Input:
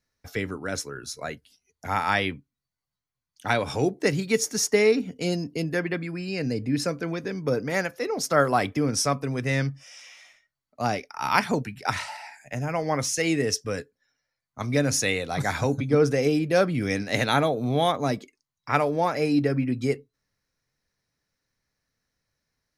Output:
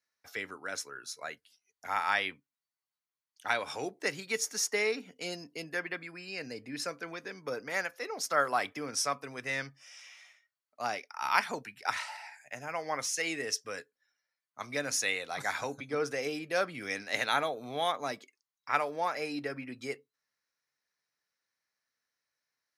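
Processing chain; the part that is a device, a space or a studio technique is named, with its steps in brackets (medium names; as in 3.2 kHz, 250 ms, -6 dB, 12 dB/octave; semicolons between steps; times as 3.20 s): filter by subtraction (in parallel: low-pass 1.3 kHz 12 dB/octave + polarity flip); on the sum: trim -6 dB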